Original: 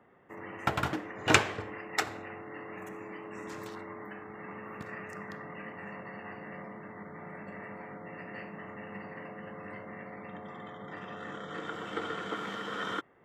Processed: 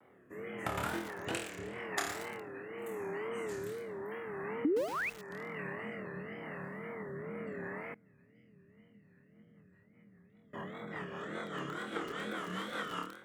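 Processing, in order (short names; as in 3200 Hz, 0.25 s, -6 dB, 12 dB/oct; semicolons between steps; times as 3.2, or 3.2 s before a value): flutter echo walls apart 4.4 m, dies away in 0.53 s; 4.65–5.1 painted sound rise 250–2500 Hz -15 dBFS; compressor 3:1, threshold -35 dBFS, peak gain reduction 15 dB; HPF 73 Hz 6 dB/oct; resonant high shelf 7300 Hz +7 dB, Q 1.5; rotary speaker horn 0.85 Hz, later 5 Hz, at 8.47; 7.94–10.54 passive tone stack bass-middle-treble 10-0-1; wow and flutter 150 cents; lo-fi delay 0.116 s, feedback 80%, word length 6-bit, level -10 dB; gain +1 dB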